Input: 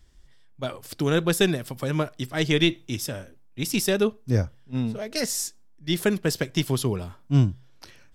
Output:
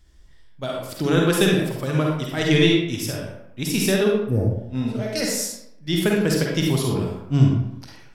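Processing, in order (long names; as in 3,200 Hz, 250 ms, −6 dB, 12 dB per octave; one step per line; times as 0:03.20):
gain on a spectral selection 0:04.22–0:04.50, 930–8,100 Hz −20 dB
convolution reverb RT60 0.80 s, pre-delay 41 ms, DRR −1.5 dB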